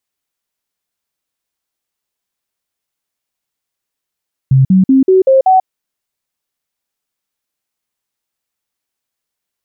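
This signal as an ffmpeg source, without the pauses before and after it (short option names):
-f lavfi -i "aevalsrc='0.596*clip(min(mod(t,0.19),0.14-mod(t,0.19))/0.005,0,1)*sin(2*PI*133*pow(2,floor(t/0.19)/2)*mod(t,0.19))':d=1.14:s=44100"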